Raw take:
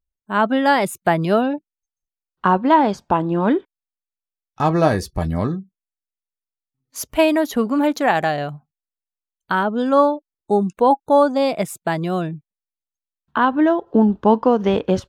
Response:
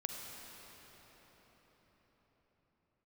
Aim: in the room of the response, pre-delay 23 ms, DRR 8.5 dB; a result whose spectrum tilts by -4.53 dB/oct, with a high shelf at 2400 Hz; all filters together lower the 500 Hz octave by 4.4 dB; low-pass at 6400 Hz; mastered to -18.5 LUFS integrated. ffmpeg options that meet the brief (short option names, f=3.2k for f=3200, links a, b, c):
-filter_complex "[0:a]lowpass=6.4k,equalizer=f=500:t=o:g=-6,highshelf=f=2.4k:g=5.5,asplit=2[a][b];[1:a]atrim=start_sample=2205,adelay=23[c];[b][c]afir=irnorm=-1:irlink=0,volume=-9dB[d];[a][d]amix=inputs=2:normalize=0,volume=1.5dB"